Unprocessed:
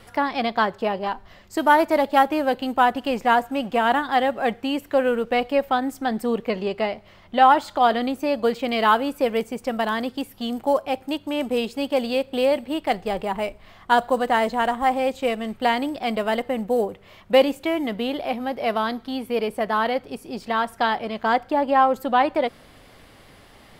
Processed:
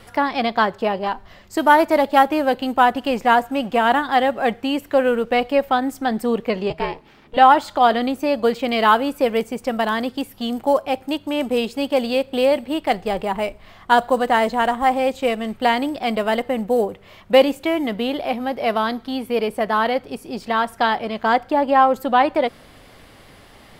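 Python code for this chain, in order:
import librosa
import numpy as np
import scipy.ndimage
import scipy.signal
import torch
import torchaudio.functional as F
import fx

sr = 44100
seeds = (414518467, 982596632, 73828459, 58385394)

y = fx.ring_mod(x, sr, carrier_hz=240.0, at=(6.7, 7.37))
y = y * librosa.db_to_amplitude(3.0)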